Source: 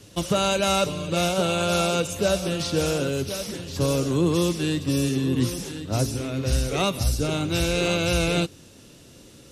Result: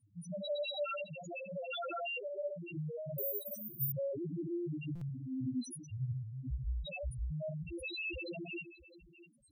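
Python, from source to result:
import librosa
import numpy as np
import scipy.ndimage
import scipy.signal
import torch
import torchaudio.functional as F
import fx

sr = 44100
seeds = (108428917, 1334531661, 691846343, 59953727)

y = fx.rev_gated(x, sr, seeds[0], gate_ms=200, shape='rising', drr_db=-4.5)
y = fx.rider(y, sr, range_db=10, speed_s=2.0)
y = F.preemphasis(torch.from_numpy(y), 0.8).numpy()
y = fx.notch(y, sr, hz=460.0, q=12.0)
y = fx.echo_multitap(y, sr, ms=(104, 659), db=(-13.5, -17.0))
y = fx.spec_topn(y, sr, count=1)
y = fx.resample_bad(y, sr, factor=3, down='filtered', up='zero_stuff', at=(3.18, 3.92))
y = fx.buffer_glitch(y, sr, at_s=(4.95,), block=256, repeats=10)
y = fx.env_flatten(y, sr, amount_pct=70, at=(1.73, 2.18))
y = y * librosa.db_to_amplitude(1.0)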